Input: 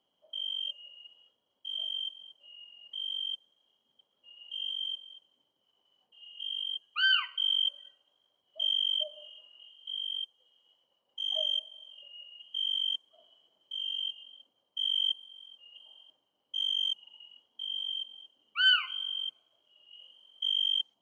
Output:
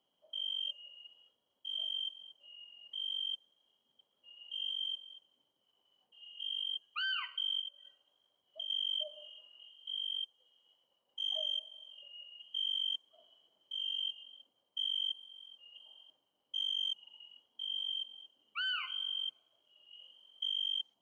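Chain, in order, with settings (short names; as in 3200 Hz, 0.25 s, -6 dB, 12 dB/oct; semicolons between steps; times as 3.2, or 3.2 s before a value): 7.6–8.7 compressor 12:1, threshold -37 dBFS, peak gain reduction 12.5 dB; limiter -26 dBFS, peak gain reduction 11.5 dB; gain -2.5 dB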